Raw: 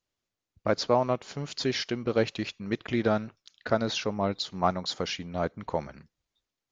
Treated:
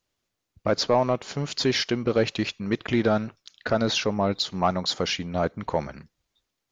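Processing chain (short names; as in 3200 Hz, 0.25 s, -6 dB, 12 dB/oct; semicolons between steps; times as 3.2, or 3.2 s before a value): in parallel at +0.5 dB: limiter -18 dBFS, peak gain reduction 10 dB; on the sum: soft clip -9 dBFS, distortion -21 dB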